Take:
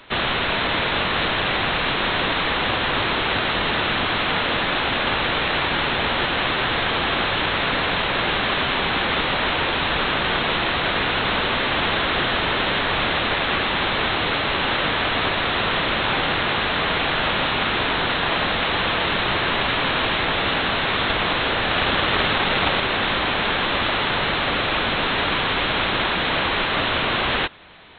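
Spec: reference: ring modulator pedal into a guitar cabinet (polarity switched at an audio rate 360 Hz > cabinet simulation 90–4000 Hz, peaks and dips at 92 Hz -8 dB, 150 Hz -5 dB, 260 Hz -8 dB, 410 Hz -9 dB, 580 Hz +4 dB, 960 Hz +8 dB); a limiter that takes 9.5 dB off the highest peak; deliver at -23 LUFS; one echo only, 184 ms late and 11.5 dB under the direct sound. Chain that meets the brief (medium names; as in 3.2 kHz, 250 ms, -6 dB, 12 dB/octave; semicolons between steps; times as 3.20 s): peak limiter -16 dBFS; delay 184 ms -11.5 dB; polarity switched at an audio rate 360 Hz; cabinet simulation 90–4000 Hz, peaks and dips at 92 Hz -8 dB, 150 Hz -5 dB, 260 Hz -8 dB, 410 Hz -9 dB, 580 Hz +4 dB, 960 Hz +8 dB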